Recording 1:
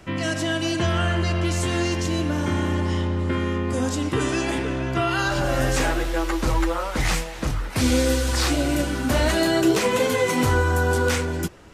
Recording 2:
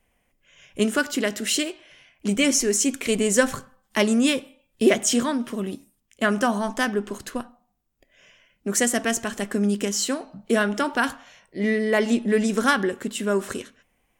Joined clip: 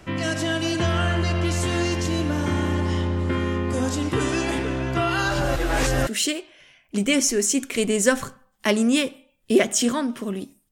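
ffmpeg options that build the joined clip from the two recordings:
-filter_complex "[0:a]apad=whole_dur=10.71,atrim=end=10.71,asplit=2[a][b];[a]atrim=end=5.562[c];[b]atrim=start=5.558:end=6.072,asetpts=PTS-STARTPTS,areverse[d];[1:a]atrim=start=1.378:end=6.02[e];[c][d]acrossfade=d=0.004:c1=hsin:c2=hsin[f];[f][e]acrossfade=d=0.004:c1=hsin:c2=hsin"

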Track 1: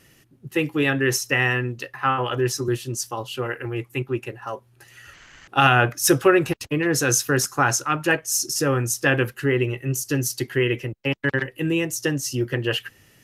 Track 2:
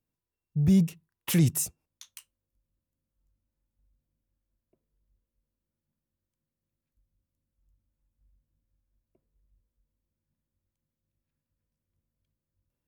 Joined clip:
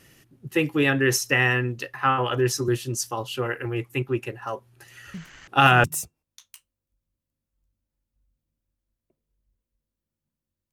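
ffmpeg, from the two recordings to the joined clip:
-filter_complex "[1:a]asplit=2[a][b];[0:a]apad=whole_dur=10.72,atrim=end=10.72,atrim=end=5.842[c];[b]atrim=start=1.468:end=6.35[d];[a]atrim=start=0.77:end=1.47,asetpts=PTS-STARTPTS,volume=-14.5dB,afade=t=in:d=0.004:c=hsin,afade=t=out:st=0.696:d=0.004:c=hsin,adelay=5140[e];[c][d]acrossfade=d=0.004:c1=hsin:c2=hsin[f];[f][e]amix=inputs=2:normalize=0"

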